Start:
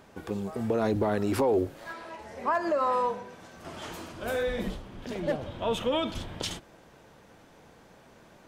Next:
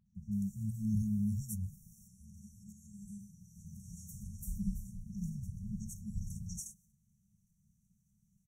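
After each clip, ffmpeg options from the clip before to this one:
ffmpeg -i in.wav -filter_complex "[0:a]agate=range=-12dB:threshold=-52dB:ratio=16:detection=peak,afftfilt=real='re*(1-between(b*sr/4096,220,5500))':imag='im*(1-between(b*sr/4096,220,5500))':win_size=4096:overlap=0.75,acrossover=split=1800|5400[link_01][link_02][link_03];[link_02]adelay=60[link_04];[link_03]adelay=150[link_05];[link_01][link_04][link_05]amix=inputs=3:normalize=0" out.wav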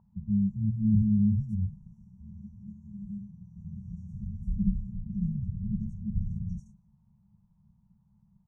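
ffmpeg -i in.wav -af "lowpass=frequency=930:width_type=q:width=7.5,volume=9dB" out.wav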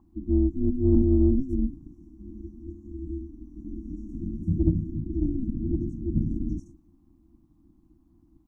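ffmpeg -i in.wav -filter_complex "[0:a]aeval=exprs='val(0)*sin(2*PI*130*n/s)':channel_layout=same,asplit=2[link_01][link_02];[link_02]asoftclip=type=tanh:threshold=-24.5dB,volume=-11dB[link_03];[link_01][link_03]amix=inputs=2:normalize=0,volume=5.5dB" out.wav

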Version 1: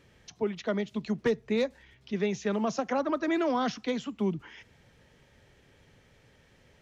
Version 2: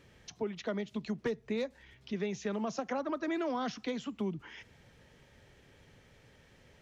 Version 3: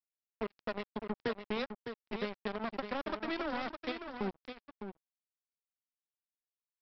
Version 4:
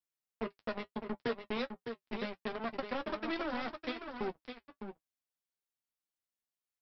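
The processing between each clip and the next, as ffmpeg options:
ffmpeg -i in.wav -af "acompressor=threshold=-36dB:ratio=2" out.wav
ffmpeg -i in.wav -af "aresample=11025,acrusher=bits=4:mix=0:aa=0.5,aresample=44100,aecho=1:1:608:0.398,volume=-2.5dB" out.wav
ffmpeg -i in.wav -filter_complex "[0:a]flanger=delay=6.9:depth=2.3:regen=-49:speed=0.74:shape=triangular,asplit=2[link_01][link_02];[link_02]adelay=13,volume=-13dB[link_03];[link_01][link_03]amix=inputs=2:normalize=0,volume=3.5dB" out.wav

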